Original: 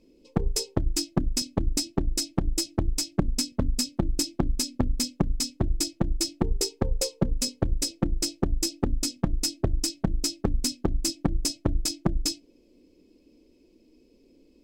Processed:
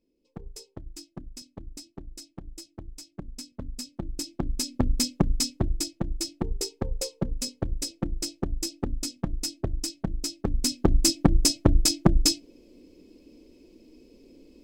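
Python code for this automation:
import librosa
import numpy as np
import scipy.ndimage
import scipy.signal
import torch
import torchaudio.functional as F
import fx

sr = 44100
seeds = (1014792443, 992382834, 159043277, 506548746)

y = fx.gain(x, sr, db=fx.line((3.05, -16.0), (4.16, -7.5), (4.91, 2.0), (5.45, 2.0), (5.93, -4.0), (10.35, -4.0), (10.92, 6.0)))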